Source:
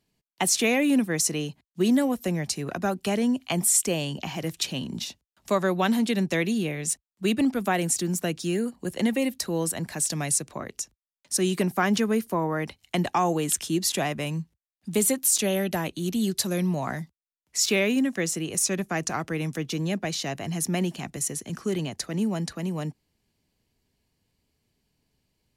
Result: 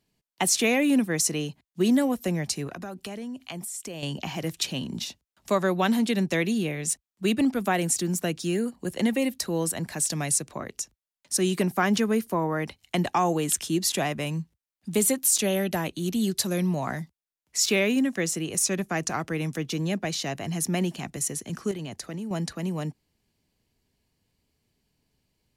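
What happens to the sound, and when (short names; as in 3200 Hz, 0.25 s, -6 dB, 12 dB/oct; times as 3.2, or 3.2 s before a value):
2.67–4.03 compressor 8:1, threshold -33 dBFS
21.71–22.31 compressor, threshold -31 dBFS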